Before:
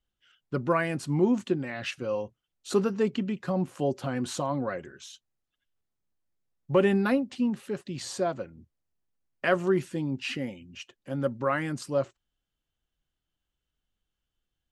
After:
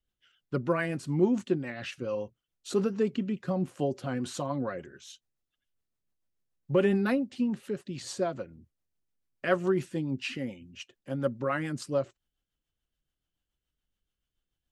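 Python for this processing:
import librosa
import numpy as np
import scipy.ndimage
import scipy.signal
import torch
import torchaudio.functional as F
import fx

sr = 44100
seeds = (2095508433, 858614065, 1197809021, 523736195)

y = fx.rotary(x, sr, hz=7.0)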